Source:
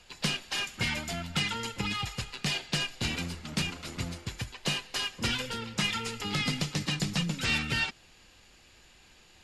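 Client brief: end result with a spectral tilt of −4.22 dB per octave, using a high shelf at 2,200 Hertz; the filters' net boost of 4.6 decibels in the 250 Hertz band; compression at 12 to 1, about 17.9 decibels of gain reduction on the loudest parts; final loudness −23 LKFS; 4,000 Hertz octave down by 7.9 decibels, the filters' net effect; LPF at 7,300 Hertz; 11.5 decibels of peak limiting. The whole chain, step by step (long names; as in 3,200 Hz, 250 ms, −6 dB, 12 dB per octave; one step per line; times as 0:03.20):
low-pass filter 7,300 Hz
parametric band 250 Hz +6.5 dB
high-shelf EQ 2,200 Hz −4 dB
parametric band 4,000 Hz −7.5 dB
downward compressor 12 to 1, threshold −43 dBFS
level +27 dB
brickwall limiter −12.5 dBFS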